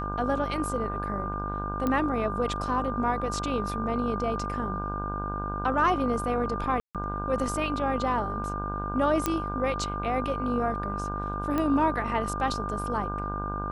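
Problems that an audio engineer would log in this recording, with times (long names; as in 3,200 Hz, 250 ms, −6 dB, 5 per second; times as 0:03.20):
mains buzz 50 Hz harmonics 32 −34 dBFS
whistle 1,200 Hz −33 dBFS
0:01.87: click −15 dBFS
0:06.80–0:06.95: drop-out 147 ms
0:09.26: click −10 dBFS
0:11.58: click −16 dBFS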